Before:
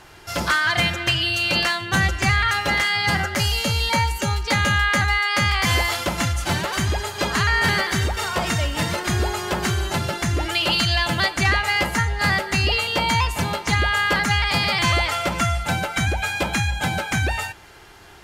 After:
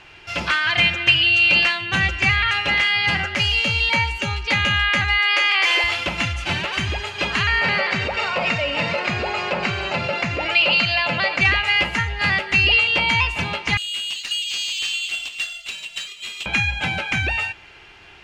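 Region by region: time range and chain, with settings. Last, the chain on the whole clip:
5.19–5.84 brick-wall FIR high-pass 300 Hz + fast leveller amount 50%
7.61–11.41 speaker cabinet 150–6500 Hz, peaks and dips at 340 Hz -9 dB, 550 Hz +9 dB, 1700 Hz -4 dB, 3300 Hz -9 dB, 6000 Hz -8 dB + fast leveller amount 50%
13.77–16.46 rippled Chebyshev high-pass 2700 Hz, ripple 3 dB + careless resampling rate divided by 4×, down none, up zero stuff
whole clip: LPF 5600 Hz 12 dB/oct; bell 2600 Hz +13.5 dB 0.65 oct; gain -3.5 dB

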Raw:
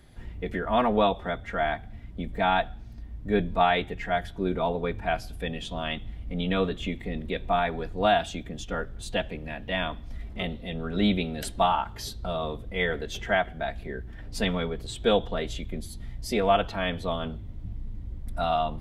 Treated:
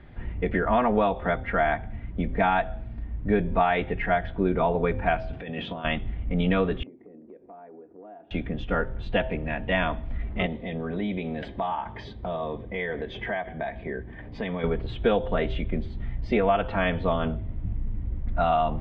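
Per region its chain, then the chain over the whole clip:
5.33–5.85 HPF 140 Hz + negative-ratio compressor -39 dBFS
6.83–8.31 ladder band-pass 390 Hz, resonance 45% + compressor 4:1, threshold -51 dBFS
10.46–14.64 notch comb 1400 Hz + compressor 4:1, threshold -33 dBFS
whole clip: LPF 2700 Hz 24 dB/oct; de-hum 129.5 Hz, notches 7; compressor 5:1, threshold -25 dBFS; gain +6.5 dB

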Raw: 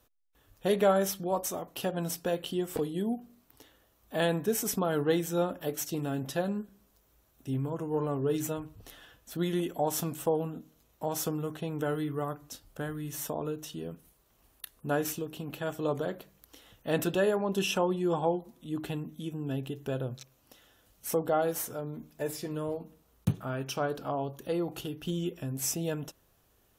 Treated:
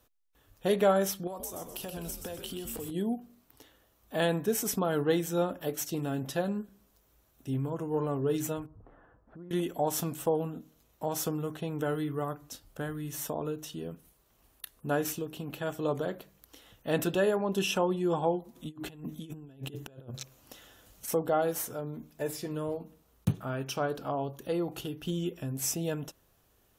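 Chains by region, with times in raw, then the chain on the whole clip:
1.27–2.91 high shelf 5400 Hz +12 dB + compressor 16:1, threshold -35 dBFS + frequency-shifting echo 0.126 s, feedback 46%, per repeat -130 Hz, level -7 dB
8.66–9.51 LPF 1300 Hz 24 dB/oct + compressor 3:1, threshold -49 dBFS
18.55–21.08 bell 6900 Hz +3 dB 0.25 oct + negative-ratio compressor -41 dBFS, ratio -0.5
whole clip: dry

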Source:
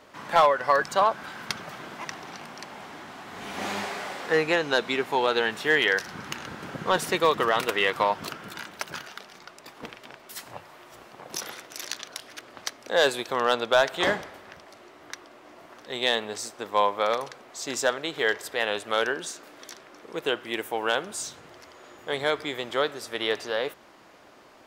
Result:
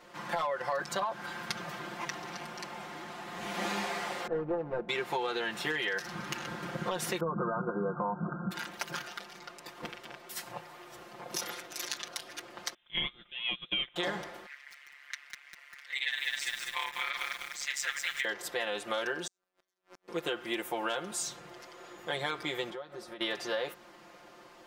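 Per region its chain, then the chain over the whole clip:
4.27–4.89 median filter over 41 samples + Chebyshev low-pass 1100 Hz
7.2–8.51 brick-wall FIR low-pass 1600 Hz + bell 180 Hz +14.5 dB 0.75 oct
12.74–13.96 inverted band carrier 3800 Hz + upward expander 2.5:1, over -30 dBFS
14.46–18.25 resonant high-pass 2000 Hz, resonance Q 4.1 + AM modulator 140 Hz, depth 90% + lo-fi delay 0.199 s, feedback 55%, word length 7-bit, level -3.5 dB
19.27–20.08 compressor 12:1, threshold -43 dBFS + robotiser 91.6 Hz + flipped gate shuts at -31 dBFS, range -35 dB
22.7–23.21 compressor 12:1, threshold -37 dBFS + high shelf 2800 Hz -11 dB + comb 5.5 ms, depth 39%
whole clip: comb 5.7 ms, depth 97%; limiter -13.5 dBFS; compressor, threshold -25 dBFS; gain -4 dB

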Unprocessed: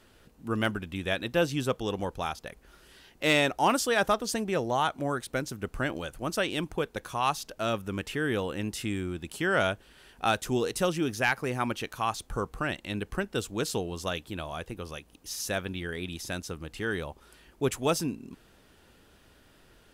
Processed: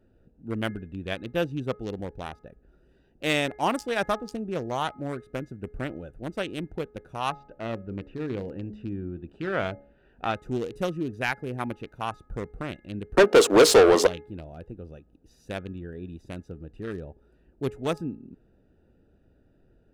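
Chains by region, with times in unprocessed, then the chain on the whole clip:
7.3–10.35 LPF 2800 Hz + de-hum 70.71 Hz, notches 10 + mismatched tape noise reduction encoder only
13.17–14.07 HPF 200 Hz + bell 480 Hz +14.5 dB 2.1 oct + overdrive pedal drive 27 dB, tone 5100 Hz, clips at -7 dBFS
whole clip: Wiener smoothing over 41 samples; de-hum 420.6 Hz, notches 5

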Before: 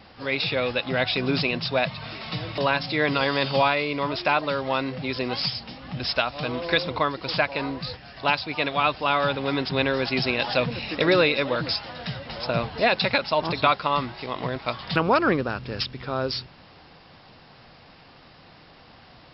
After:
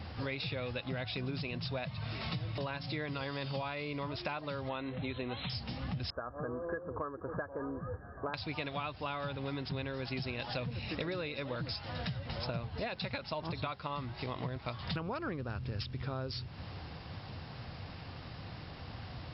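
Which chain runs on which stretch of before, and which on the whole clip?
4.69–5.5 brick-wall FIR low-pass 4200 Hz + bell 140 Hz -8 dB 0.48 oct
6.1–8.34 rippled Chebyshev low-pass 1700 Hz, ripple 9 dB + bell 140 Hz -7 dB 0.6 oct
whole clip: bell 88 Hz +15 dB 1.5 oct; compressor 10:1, threshold -35 dBFS

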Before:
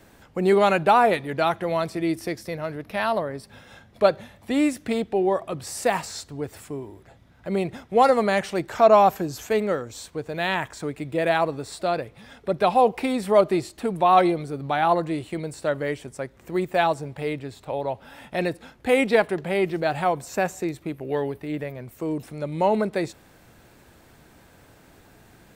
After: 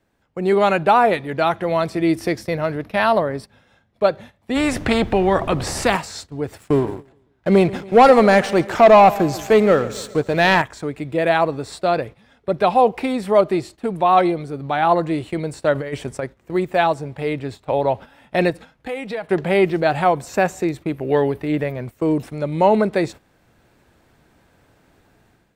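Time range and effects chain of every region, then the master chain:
4.55–5.95 tilt -3 dB/oct + added noise brown -53 dBFS + spectral compressor 2:1
6.59–10.62 sample leveller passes 2 + feedback echo 0.14 s, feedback 52%, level -17.5 dB
15.75–16.24 bell 310 Hz -4.5 dB 0.21 oct + negative-ratio compressor -30 dBFS, ratio -0.5
18.5–19.28 bell 360 Hz -8 dB 0.41 oct + compressor 5:1, threshold -34 dBFS + comb 6.3 ms, depth 32%
whole clip: gate -39 dBFS, range -13 dB; high shelf 6700 Hz -7.5 dB; AGC; gain -2 dB

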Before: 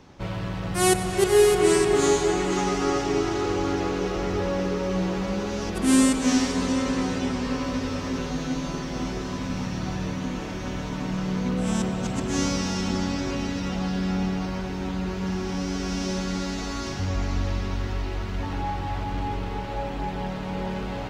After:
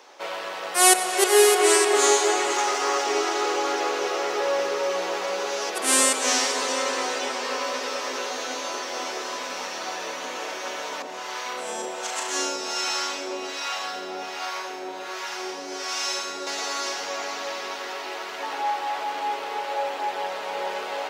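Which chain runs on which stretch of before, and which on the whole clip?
2.52–3.07 HPF 240 Hz + short-mantissa float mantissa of 6-bit + core saturation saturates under 880 Hz
11.02–16.47 harmonic tremolo 1.3 Hz, crossover 690 Hz + flutter echo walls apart 6 m, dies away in 0.47 s
whole clip: HPF 470 Hz 24 dB/oct; high shelf 6600 Hz +5 dB; gain +5.5 dB

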